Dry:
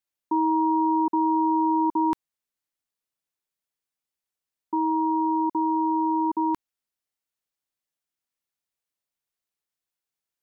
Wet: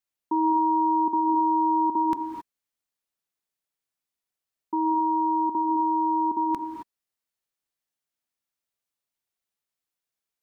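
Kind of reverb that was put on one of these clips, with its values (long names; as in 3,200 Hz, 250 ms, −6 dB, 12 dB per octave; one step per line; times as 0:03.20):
reverb whose tail is shaped and stops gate 290 ms rising, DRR 5 dB
level −1 dB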